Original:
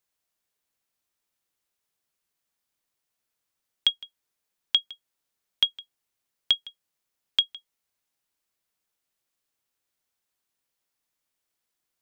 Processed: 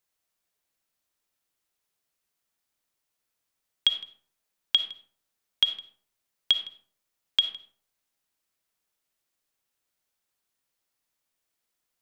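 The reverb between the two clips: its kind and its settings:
comb and all-pass reverb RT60 0.53 s, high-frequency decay 0.5×, pre-delay 15 ms, DRR 7.5 dB

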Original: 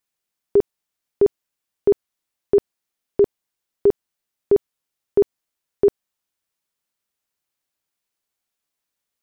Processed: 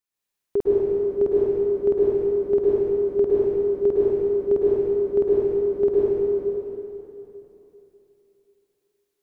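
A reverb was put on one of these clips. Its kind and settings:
dense smooth reverb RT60 3.2 s, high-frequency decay 0.9×, pre-delay 95 ms, DRR −8 dB
level −7.5 dB

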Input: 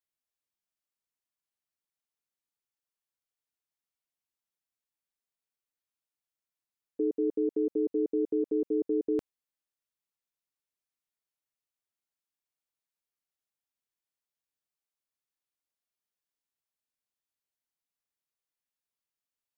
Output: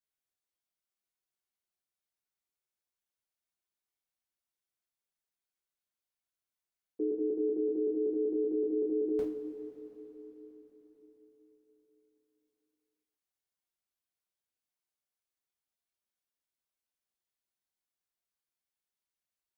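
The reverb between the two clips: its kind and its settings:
coupled-rooms reverb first 0.38 s, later 4.8 s, from −18 dB, DRR −6 dB
level −8.5 dB

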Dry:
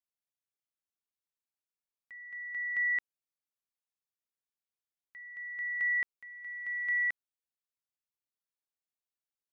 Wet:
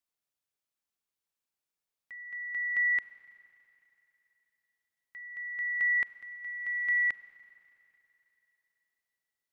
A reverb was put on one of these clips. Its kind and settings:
four-comb reverb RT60 3.2 s, combs from 32 ms, DRR 14 dB
level +3.5 dB

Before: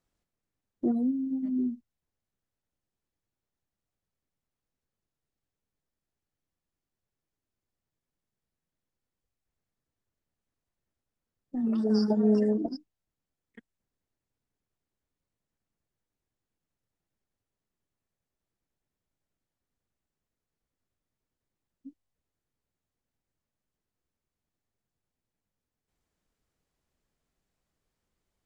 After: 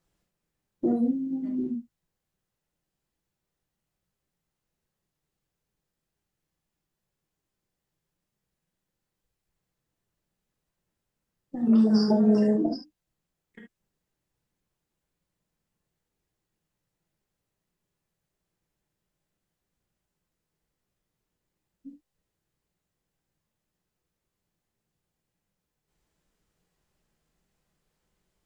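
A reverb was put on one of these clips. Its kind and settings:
reverb whose tail is shaped and stops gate 90 ms flat, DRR 1 dB
level +3 dB

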